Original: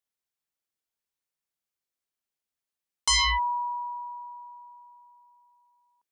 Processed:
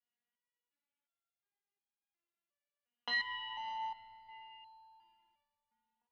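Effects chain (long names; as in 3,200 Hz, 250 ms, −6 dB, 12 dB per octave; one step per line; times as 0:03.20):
in parallel at −1 dB: brickwall limiter −25.5 dBFS, peak gain reduction 8 dB
on the sum: notch filter 1,300 Hz, Q 28
leveller curve on the samples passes 2
dynamic equaliser 1,200 Hz, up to −4 dB, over −39 dBFS, Q 1.4
feedback delay network reverb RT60 2.1 s, low-frequency decay 1.5×, high-frequency decay 0.85×, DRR −3.5 dB
downward compressor 6 to 1, threshold −23 dBFS, peak gain reduction 11 dB
single-sideband voice off tune −81 Hz 180–3,400 Hz
step-sequenced resonator 2.8 Hz 240–820 Hz
level +8 dB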